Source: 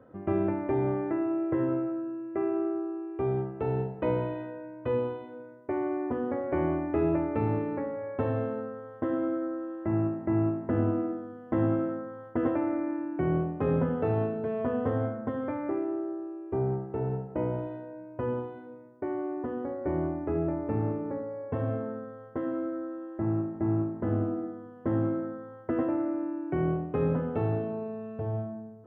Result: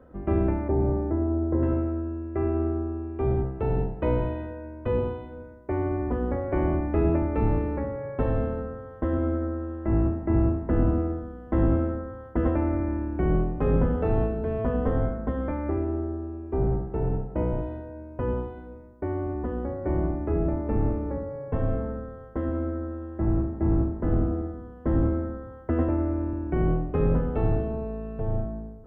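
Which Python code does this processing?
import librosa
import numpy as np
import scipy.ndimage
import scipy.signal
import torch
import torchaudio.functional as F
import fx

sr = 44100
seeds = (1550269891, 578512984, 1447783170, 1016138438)

y = fx.octave_divider(x, sr, octaves=2, level_db=3.0)
y = fx.lowpass(y, sr, hz=1000.0, slope=12, at=(0.68, 1.63))
y = y * librosa.db_to_amplitude(1.5)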